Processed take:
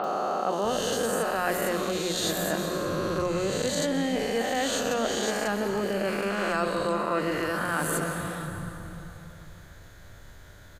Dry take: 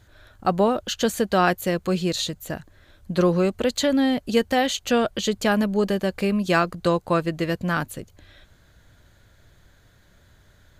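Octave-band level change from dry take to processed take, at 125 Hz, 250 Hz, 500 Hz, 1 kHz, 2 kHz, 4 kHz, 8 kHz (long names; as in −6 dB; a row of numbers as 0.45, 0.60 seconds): −6.5, −7.0, −3.5, −3.0, −2.0, −3.5, +1.5 decibels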